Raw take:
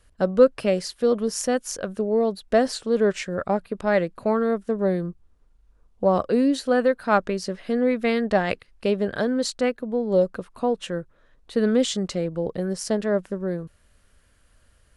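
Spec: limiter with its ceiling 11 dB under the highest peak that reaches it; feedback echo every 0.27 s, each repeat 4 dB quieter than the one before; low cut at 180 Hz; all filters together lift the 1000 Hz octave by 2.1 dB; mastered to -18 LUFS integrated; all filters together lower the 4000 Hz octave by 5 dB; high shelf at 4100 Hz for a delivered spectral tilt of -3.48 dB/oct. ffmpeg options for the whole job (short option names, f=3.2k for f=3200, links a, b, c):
-af "highpass=180,equalizer=f=1k:t=o:g=3.5,equalizer=f=4k:t=o:g=-3,highshelf=f=4.1k:g=-6,alimiter=limit=-14.5dB:level=0:latency=1,aecho=1:1:270|540|810|1080|1350|1620|1890|2160|2430:0.631|0.398|0.25|0.158|0.0994|0.0626|0.0394|0.0249|0.0157,volume=6.5dB"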